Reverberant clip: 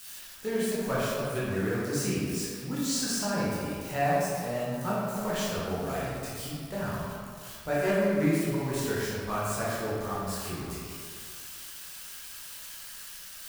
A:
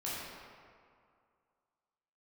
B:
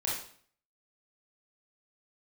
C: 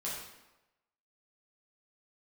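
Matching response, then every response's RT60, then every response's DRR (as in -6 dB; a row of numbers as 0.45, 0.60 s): A; 2.2, 0.55, 1.0 s; -9.0, -5.5, -7.5 dB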